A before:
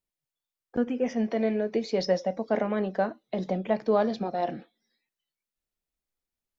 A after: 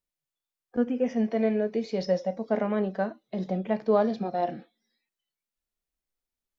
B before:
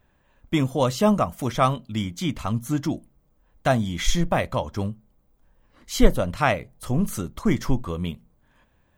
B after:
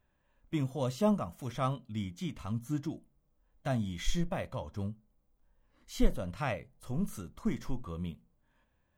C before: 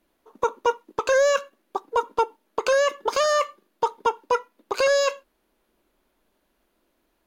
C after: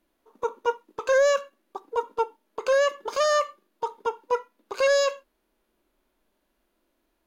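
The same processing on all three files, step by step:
harmonic and percussive parts rebalanced percussive −8 dB
normalise the peak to −12 dBFS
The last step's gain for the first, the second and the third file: +1.5, −8.5, −0.5 decibels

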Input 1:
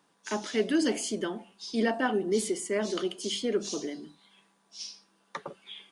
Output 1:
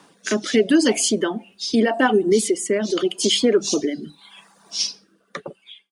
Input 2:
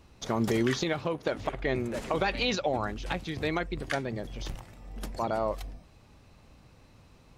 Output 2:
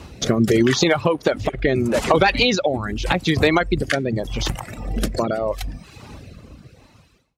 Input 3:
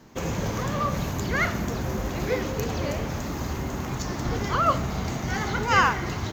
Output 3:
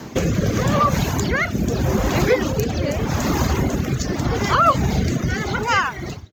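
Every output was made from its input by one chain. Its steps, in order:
fade-out on the ending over 1.25 s
downward compressor 2.5 to 1, threshold −37 dBFS
rotating-speaker cabinet horn 0.8 Hz
hard clipping −26.5 dBFS
reverb reduction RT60 0.89 s
high-pass filter 50 Hz
loudness normalisation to −20 LKFS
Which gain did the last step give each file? +20.5, +22.0, +20.5 decibels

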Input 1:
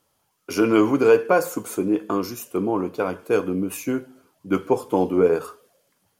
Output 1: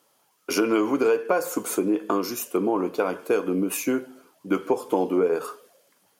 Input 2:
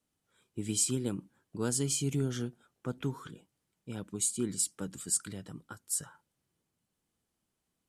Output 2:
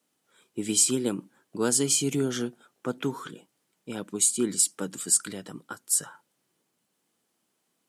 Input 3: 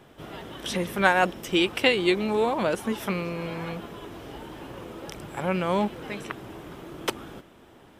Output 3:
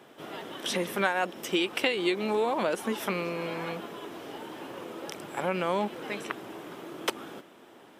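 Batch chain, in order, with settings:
high-pass filter 240 Hz 12 dB per octave
downward compressor 4 to 1, threshold −24 dBFS
normalise the peak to −9 dBFS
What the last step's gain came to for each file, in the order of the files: +4.5, +8.5, +0.5 decibels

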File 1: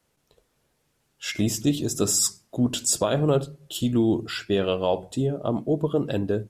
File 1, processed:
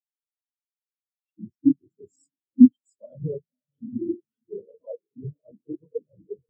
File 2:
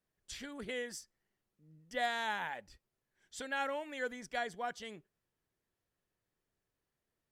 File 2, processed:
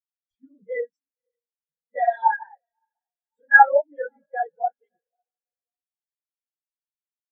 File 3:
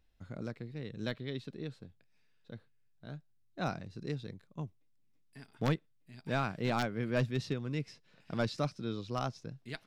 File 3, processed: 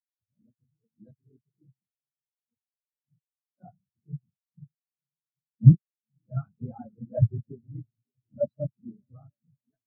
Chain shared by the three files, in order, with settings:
random phases in long frames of 50 ms
feedback delay with all-pass diffusion 545 ms, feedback 60%, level −12.5 dB
regular buffer underruns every 0.21 s, samples 256, zero, from 0:00.90
every bin expanded away from the loudest bin 4 to 1
normalise the peak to −2 dBFS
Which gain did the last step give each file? +6.0, +20.0, +15.5 decibels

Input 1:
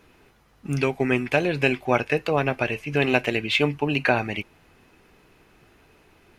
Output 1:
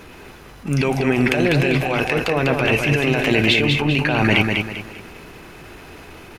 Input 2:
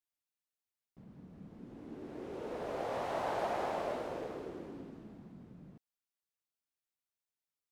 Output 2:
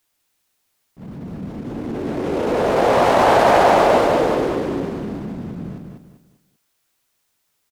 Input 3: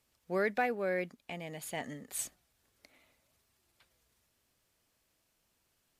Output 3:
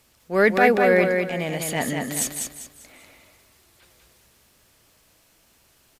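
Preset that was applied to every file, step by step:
compressor whose output falls as the input rises −28 dBFS, ratio −1
transient designer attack −10 dB, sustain +2 dB
repeating echo 197 ms, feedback 33%, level −4.5 dB
normalise the peak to −2 dBFS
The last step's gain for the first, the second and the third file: +11.0, +22.0, +15.5 decibels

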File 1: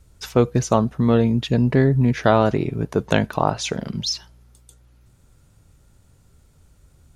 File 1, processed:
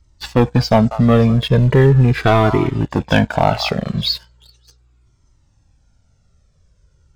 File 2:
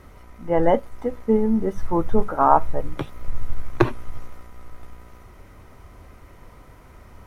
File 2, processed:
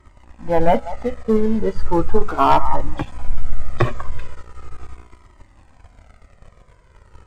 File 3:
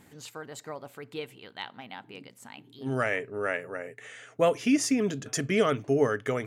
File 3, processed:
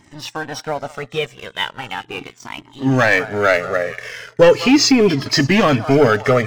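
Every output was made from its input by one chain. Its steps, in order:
hearing-aid frequency compression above 3,100 Hz 1.5 to 1
echo through a band-pass that steps 193 ms, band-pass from 1,000 Hz, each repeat 1.4 octaves, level −12 dB
leveller curve on the samples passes 2
flanger whose copies keep moving one way falling 0.38 Hz
normalise the peak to −1.5 dBFS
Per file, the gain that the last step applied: +4.0, +1.0, +13.5 decibels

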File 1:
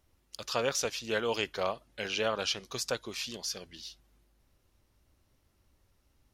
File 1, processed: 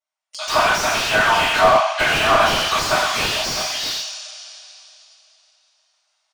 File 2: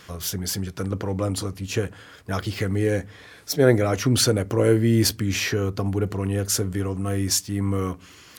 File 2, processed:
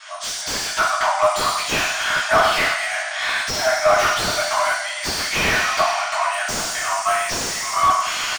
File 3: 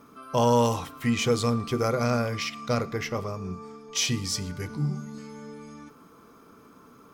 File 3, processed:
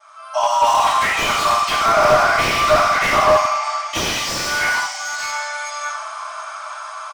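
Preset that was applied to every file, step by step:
multi-tap delay 56/96 ms −17/−10 dB
downward compressor 20 to 1, threshold −30 dBFS
noise gate with hold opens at −56 dBFS
automatic gain control gain up to 16 dB
brick-wall band-pass 590–9,600 Hz
coupled-rooms reverb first 0.46 s, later 3.1 s, from −18 dB, DRR −10 dB
dynamic equaliser 1,100 Hz, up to +4 dB, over −27 dBFS, Q 1.7
slew-rate limiting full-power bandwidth 320 Hz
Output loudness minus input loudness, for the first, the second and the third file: +16.0, +4.5, +10.5 LU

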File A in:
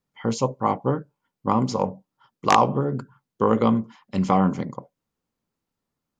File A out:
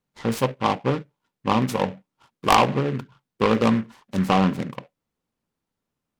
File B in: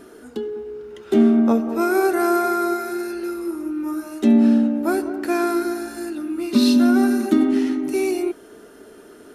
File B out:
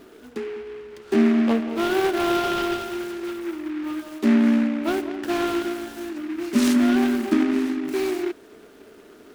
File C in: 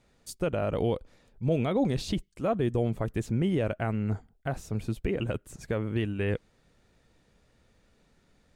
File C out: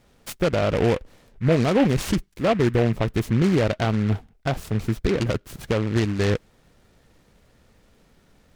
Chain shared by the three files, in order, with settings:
short delay modulated by noise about 1,600 Hz, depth 0.071 ms
loudness normalisation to −23 LKFS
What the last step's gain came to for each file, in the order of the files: +0.5, −3.0, +7.5 decibels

